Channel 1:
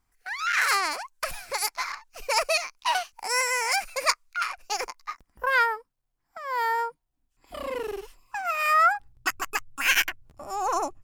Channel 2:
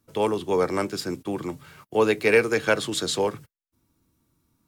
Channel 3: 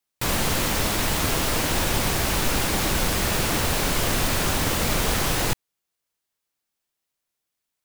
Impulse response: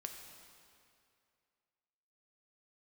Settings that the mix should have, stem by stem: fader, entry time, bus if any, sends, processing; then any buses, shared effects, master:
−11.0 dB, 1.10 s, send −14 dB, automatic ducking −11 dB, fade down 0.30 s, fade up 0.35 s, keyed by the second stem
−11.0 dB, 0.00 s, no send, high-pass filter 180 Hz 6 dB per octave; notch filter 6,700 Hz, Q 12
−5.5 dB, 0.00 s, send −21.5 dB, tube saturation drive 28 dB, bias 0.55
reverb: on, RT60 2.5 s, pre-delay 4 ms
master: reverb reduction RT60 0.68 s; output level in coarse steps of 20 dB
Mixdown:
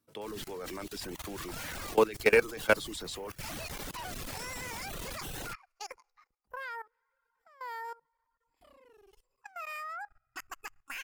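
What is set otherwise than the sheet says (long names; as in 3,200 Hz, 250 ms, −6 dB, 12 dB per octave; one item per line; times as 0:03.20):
stem 2 −11.0 dB → 0.0 dB
stem 3: send off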